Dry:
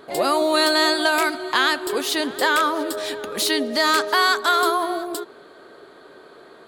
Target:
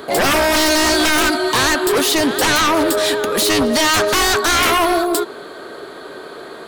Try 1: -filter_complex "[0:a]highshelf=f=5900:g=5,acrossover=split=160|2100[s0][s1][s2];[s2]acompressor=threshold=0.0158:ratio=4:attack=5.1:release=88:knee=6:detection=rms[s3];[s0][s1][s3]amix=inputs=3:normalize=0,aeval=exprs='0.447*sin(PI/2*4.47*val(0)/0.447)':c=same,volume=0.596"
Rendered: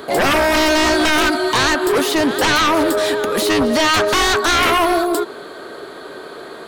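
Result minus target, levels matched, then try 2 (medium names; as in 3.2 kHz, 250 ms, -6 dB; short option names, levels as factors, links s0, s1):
compression: peak gain reduction +8 dB
-filter_complex "[0:a]highshelf=f=5900:g=5,acrossover=split=160|2100[s0][s1][s2];[s2]acompressor=threshold=0.0531:ratio=4:attack=5.1:release=88:knee=6:detection=rms[s3];[s0][s1][s3]amix=inputs=3:normalize=0,aeval=exprs='0.447*sin(PI/2*4.47*val(0)/0.447)':c=same,volume=0.596"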